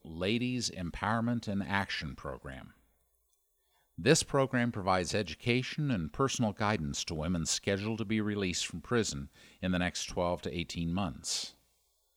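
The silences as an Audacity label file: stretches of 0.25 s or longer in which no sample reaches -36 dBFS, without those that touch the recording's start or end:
2.610000	3.990000	silence
9.230000	9.630000	silence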